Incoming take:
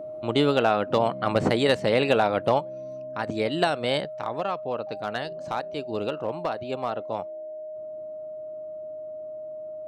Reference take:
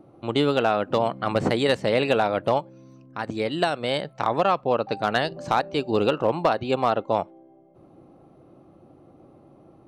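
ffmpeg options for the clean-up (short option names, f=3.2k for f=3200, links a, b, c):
-af "bandreject=f=620:w=30,asetnsamples=n=441:p=0,asendcmd='4.05 volume volume 8dB',volume=0dB"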